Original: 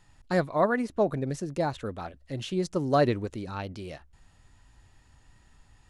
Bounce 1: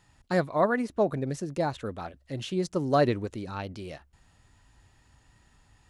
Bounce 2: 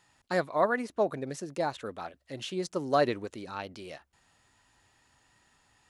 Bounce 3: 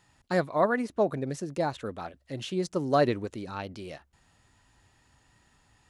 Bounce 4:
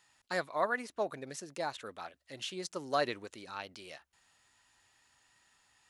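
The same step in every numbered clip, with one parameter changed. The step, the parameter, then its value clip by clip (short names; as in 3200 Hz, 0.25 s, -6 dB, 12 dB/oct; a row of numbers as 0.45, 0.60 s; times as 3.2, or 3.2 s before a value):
HPF, cutoff: 47, 430, 150, 1500 Hz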